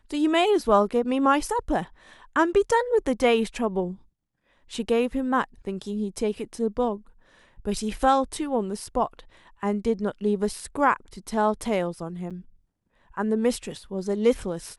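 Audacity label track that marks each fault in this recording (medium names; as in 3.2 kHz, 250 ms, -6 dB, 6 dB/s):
12.300000	12.310000	dropout 6.8 ms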